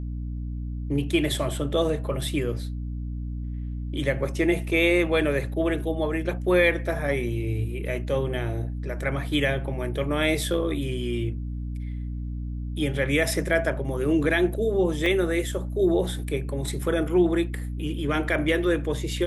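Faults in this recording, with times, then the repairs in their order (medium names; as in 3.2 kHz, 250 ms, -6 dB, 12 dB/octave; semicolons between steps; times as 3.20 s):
hum 60 Hz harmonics 5 -31 dBFS
15.06 s: dropout 2.2 ms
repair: de-hum 60 Hz, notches 5; interpolate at 15.06 s, 2.2 ms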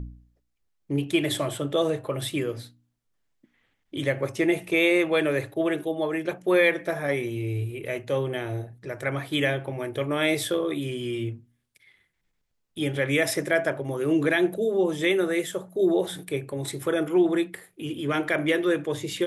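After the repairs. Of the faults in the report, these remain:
nothing left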